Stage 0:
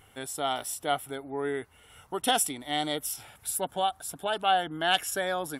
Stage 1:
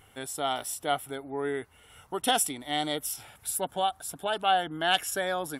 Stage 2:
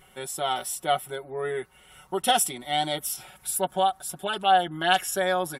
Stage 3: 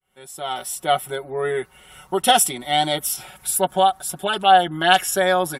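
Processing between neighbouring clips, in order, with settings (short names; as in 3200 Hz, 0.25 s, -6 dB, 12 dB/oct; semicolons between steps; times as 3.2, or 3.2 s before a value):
nothing audible
comb 5.4 ms, depth 95%
opening faded in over 1.07 s; gain +6.5 dB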